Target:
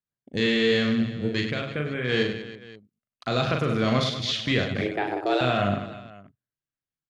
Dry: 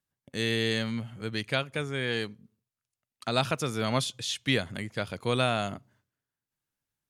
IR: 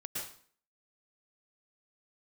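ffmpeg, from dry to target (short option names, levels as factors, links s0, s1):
-filter_complex "[0:a]afwtdn=0.0112,lowpass=f=3600:p=1,bandreject=f=890:w=5.1,alimiter=limit=0.0794:level=0:latency=1:release=37,asplit=3[s0][s1][s2];[s0]afade=t=out:st=1.52:d=0.02[s3];[s1]acompressor=threshold=0.0158:ratio=3,afade=t=in:st=1.52:d=0.02,afade=t=out:st=2.08:d=0.02[s4];[s2]afade=t=in:st=2.08:d=0.02[s5];[s3][s4][s5]amix=inputs=3:normalize=0,asettb=1/sr,asplit=3[s6][s7][s8];[s6]atrim=end=4.814[s9];[s7]atrim=start=4.81:end=5.41,asetpts=PTS-STARTPTS,afade=t=in:d=0.004:c=qsin,afade=t=out:st=0.596:d=0.004:c=qsin,afreqshift=210[s10];[s8]atrim=start=5.406[s11];[s9][s10]acrossfade=d=0.004:c1=hsin:c2=qsin[s12];[s12][s11]acrossfade=d=0.004:c1=qsin:c2=hsin,aecho=1:1:40|100|190|325|527.5:0.631|0.398|0.251|0.158|0.1,volume=2.37"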